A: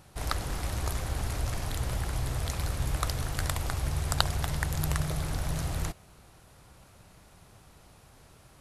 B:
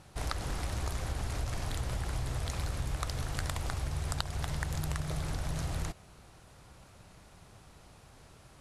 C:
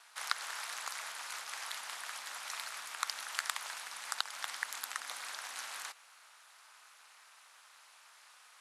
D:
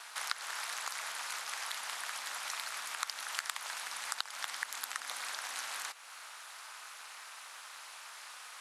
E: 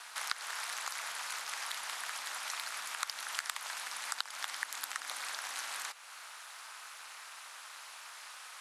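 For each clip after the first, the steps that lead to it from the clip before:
low-pass filter 10,000 Hz 12 dB per octave; downward compressor 6 to 1, threshold −30 dBFS, peak gain reduction 12 dB
ring modulation 120 Hz; four-pole ladder high-pass 910 Hz, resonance 20%; level +10 dB
downward compressor 2 to 1, threshold −54 dBFS, peak gain reduction 15 dB; level +11 dB
frequency shifter +16 Hz

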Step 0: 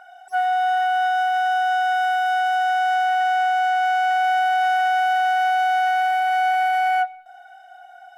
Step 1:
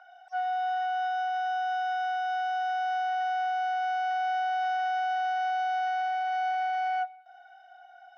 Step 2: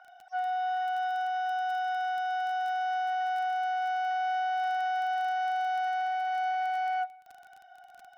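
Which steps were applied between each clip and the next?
Chebyshev band-pass filter 590–5,800 Hz, order 4; dynamic equaliser 2,100 Hz, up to −5 dB, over −38 dBFS, Q 0.71; level −7 dB
surface crackle 18 per second −38 dBFS; level −1 dB

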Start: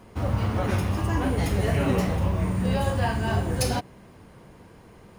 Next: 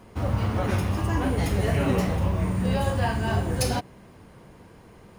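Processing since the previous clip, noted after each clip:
no processing that can be heard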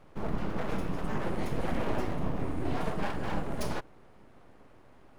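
high-shelf EQ 2,500 Hz −10.5 dB
full-wave rectification
level −4.5 dB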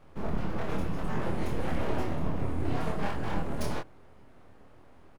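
parametric band 83 Hz +4.5 dB 0.89 octaves
double-tracking delay 25 ms −3.5 dB
level −1.5 dB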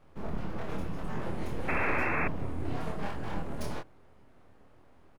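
sound drawn into the spectrogram noise, 0:01.68–0:02.28, 230–2,700 Hz −27 dBFS
level −4 dB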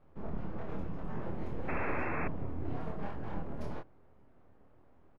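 low-pass filter 1,200 Hz 6 dB per octave
level −3 dB

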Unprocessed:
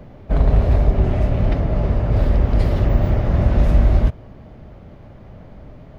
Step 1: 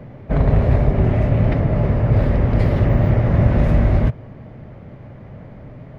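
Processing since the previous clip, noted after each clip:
octave-band graphic EQ 125/250/500/1,000/2,000 Hz +11/+5/+6/+4/+9 dB
level −5 dB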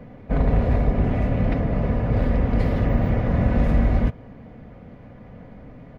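comb filter 4.1 ms, depth 44%
level −4 dB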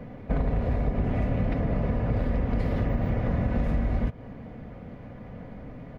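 downward compressor, threshold −23 dBFS, peak gain reduction 9.5 dB
level +1 dB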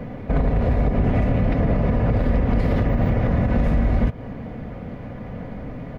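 brickwall limiter −19.5 dBFS, peak gain reduction 6 dB
level +8.5 dB

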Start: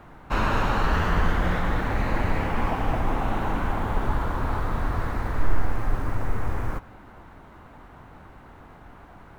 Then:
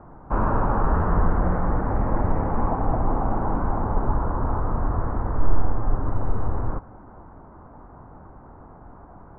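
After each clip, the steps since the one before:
low-pass filter 1,200 Hz 24 dB per octave
level +2.5 dB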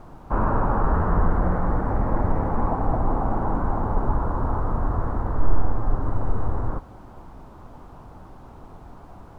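background noise brown −46 dBFS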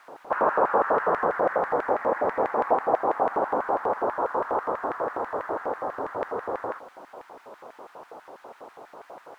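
auto-filter high-pass square 6.1 Hz 500–1,800 Hz
level +2.5 dB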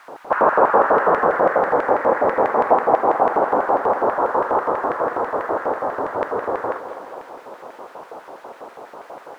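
tape delay 212 ms, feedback 63%, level −10 dB
level +7 dB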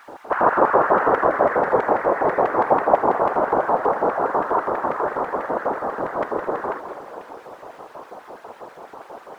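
random phases in short frames
level −1.5 dB

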